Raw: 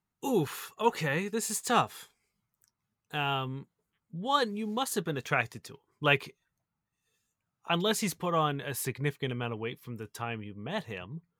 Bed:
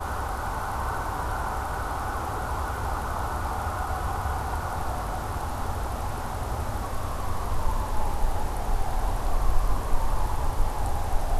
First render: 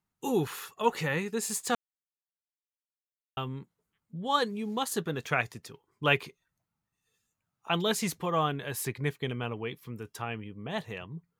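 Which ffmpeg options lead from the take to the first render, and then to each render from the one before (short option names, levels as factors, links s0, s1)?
-filter_complex "[0:a]asplit=3[s0][s1][s2];[s0]atrim=end=1.75,asetpts=PTS-STARTPTS,afade=t=out:st=1.746:d=0.004:c=hsin[s3];[s1]atrim=start=1.75:end=3.37,asetpts=PTS-STARTPTS,volume=0[s4];[s2]atrim=start=3.37,asetpts=PTS-STARTPTS,afade=t=in:d=0.004:c=hsin[s5];[s3][s4][s5]concat=n=3:v=0:a=1"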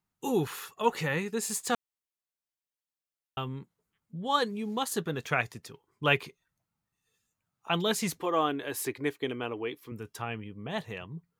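-filter_complex "[0:a]asettb=1/sr,asplit=3[s0][s1][s2];[s0]atrim=end=8.184[s3];[s1]atrim=start=8.18:end=9.92,asetpts=PTS-STARTPTS,afade=t=in:d=0.004:c=qsin,afade=t=out:st=1.736:d=0.004:c=qsin,lowshelf=f=230:t=q:w=3:g=-7[s4];[s2]atrim=start=9.916[s5];[s3][s4]acrossfade=d=0.004:c1=hsin:c2=qsin[s6];[s6][s5]acrossfade=d=0.004:c1=qsin:c2=hsin"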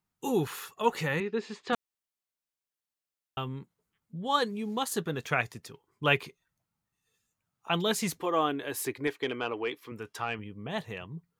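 -filter_complex "[0:a]asettb=1/sr,asplit=3[s0][s1][s2];[s0]atrim=end=1.204[s3];[s1]atrim=start=1.2:end=1.73,asetpts=PTS-STARTPTS,afade=t=in:d=0.004:c=qsin,afade=t=out:st=0.526:d=0.004:c=qsin,highpass=110,equalizer=f=150:t=q:w=4:g=-7,equalizer=f=380:t=q:w=4:g=6,equalizer=f=750:t=q:w=4:g=-3,lowpass=f=3800:w=0.5412,lowpass=f=3800:w=1.3066[s4];[s2]atrim=start=1.726[s5];[s3][s4]acrossfade=d=0.004:c1=hsin:c2=qsin[s6];[s6][s5]acrossfade=d=0.004:c1=qsin:c2=hsin,asettb=1/sr,asplit=3[s7][s8][s9];[s7]atrim=end=9.074[s10];[s8]atrim=start=9.07:end=10.39,asetpts=PTS-STARTPTS,afade=t=in:d=0.004:c=qsin,afade=t=out:st=1.316:d=0.004:c=qsin,asplit=2[s11][s12];[s12]highpass=f=720:p=1,volume=3.55,asoftclip=type=tanh:threshold=0.133[s13];[s11][s13]amix=inputs=2:normalize=0,lowpass=f=3400:p=1,volume=0.501[s14];[s9]atrim=start=10.386[s15];[s10][s14]acrossfade=d=0.004:c1=hsin:c2=qsin[s16];[s16][s15]acrossfade=d=0.004:c1=qsin:c2=hsin"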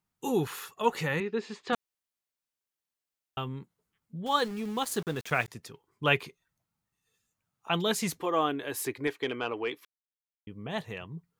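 -filter_complex "[0:a]asettb=1/sr,asplit=3[s0][s1][s2];[s0]atrim=end=4.264[s3];[s1]atrim=start=4.26:end=5.48,asetpts=PTS-STARTPTS,afade=t=in:d=0.004:c=qsin,afade=t=out:st=1.216:d=0.004:c=qsin,aeval=exprs='val(0)*gte(abs(val(0)),0.00841)':c=same[s4];[s2]atrim=start=5.476[s5];[s3][s4]acrossfade=d=0.004:c1=hsin:c2=qsin[s6];[s6][s5]acrossfade=d=0.004:c1=qsin:c2=hsin,asplit=3[s7][s8][s9];[s7]atrim=end=9.85,asetpts=PTS-STARTPTS,afade=t=out:st=9.846:d=0.004:c=hsin[s10];[s8]atrim=start=9.85:end=10.47,asetpts=PTS-STARTPTS,volume=0[s11];[s9]atrim=start=10.47,asetpts=PTS-STARTPTS,afade=t=in:d=0.004:c=hsin[s12];[s10][s11][s12]concat=n=3:v=0:a=1"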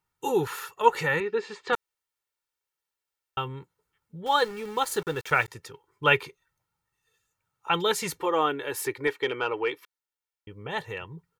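-af "equalizer=f=1300:t=o:w=1.7:g=5.5,aecho=1:1:2.2:0.61"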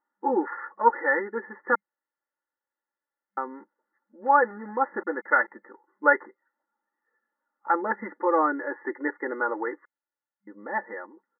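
-af "aecho=1:1:3.5:0.85,afftfilt=real='re*between(b*sr/4096,200,2100)':imag='im*between(b*sr/4096,200,2100)':win_size=4096:overlap=0.75"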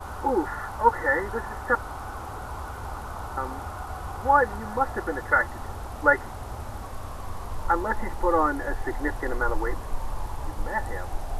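-filter_complex "[1:a]volume=0.501[s0];[0:a][s0]amix=inputs=2:normalize=0"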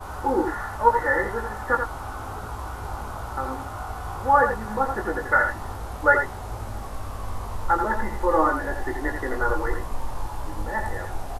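-filter_complex "[0:a]asplit=2[s0][s1];[s1]adelay=19,volume=0.562[s2];[s0][s2]amix=inputs=2:normalize=0,aecho=1:1:85:0.473"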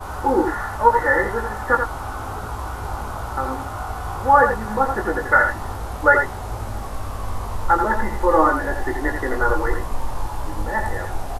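-af "volume=1.68,alimiter=limit=0.794:level=0:latency=1"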